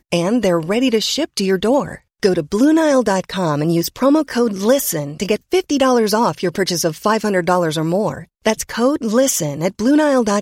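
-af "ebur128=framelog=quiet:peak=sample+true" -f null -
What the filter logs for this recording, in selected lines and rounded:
Integrated loudness:
  I:         -16.8 LUFS
  Threshold: -26.8 LUFS
Loudness range:
  LRA:         1.3 LU
  Threshold: -36.9 LUFS
  LRA low:   -17.6 LUFS
  LRA high:  -16.4 LUFS
Sample peak:
  Peak:       -1.7 dBFS
True peak:
  Peak:       -1.7 dBFS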